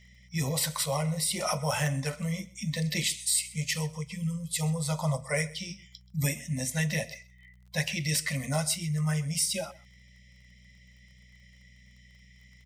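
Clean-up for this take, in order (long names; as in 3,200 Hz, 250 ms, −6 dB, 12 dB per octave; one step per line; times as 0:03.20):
click removal
hum removal 61.4 Hz, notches 3
echo removal 129 ms −21 dB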